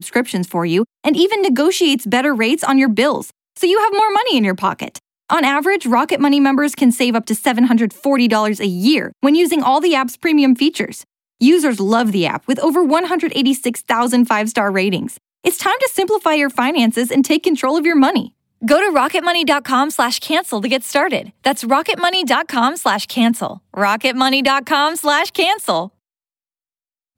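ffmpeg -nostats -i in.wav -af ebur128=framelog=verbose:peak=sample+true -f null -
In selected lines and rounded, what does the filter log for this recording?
Integrated loudness:
  I:         -15.3 LUFS
  Threshold: -25.5 LUFS
Loudness range:
  LRA:         1.8 LU
  Threshold: -35.5 LUFS
  LRA low:   -16.4 LUFS
  LRA high:  -14.6 LUFS
Sample peak:
  Peak:       -2.7 dBFS
True peak:
  Peak:       -2.7 dBFS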